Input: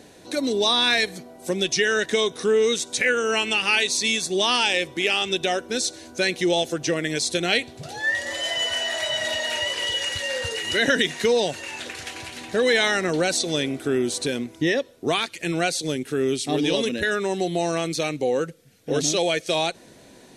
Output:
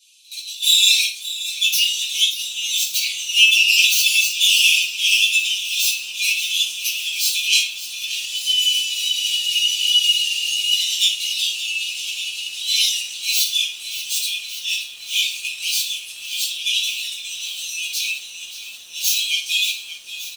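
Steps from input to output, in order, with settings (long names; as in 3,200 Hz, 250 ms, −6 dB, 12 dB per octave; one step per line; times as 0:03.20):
stylus tracing distortion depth 0.11 ms
Butterworth high-pass 2,500 Hz 96 dB per octave
automatic gain control gain up to 6 dB
comb filter 4.9 ms, depth 64%
echo ahead of the sound 70 ms −21 dB
rectangular room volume 430 cubic metres, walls furnished, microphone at 5.8 metres
feedback echo at a low word length 578 ms, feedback 80%, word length 6 bits, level −13 dB
level −6.5 dB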